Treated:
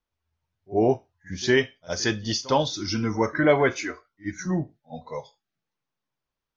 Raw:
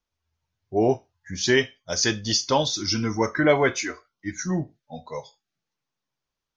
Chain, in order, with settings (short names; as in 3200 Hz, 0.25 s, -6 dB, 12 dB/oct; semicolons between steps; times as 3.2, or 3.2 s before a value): high shelf 5100 Hz -11.5 dB; reverse echo 58 ms -20.5 dB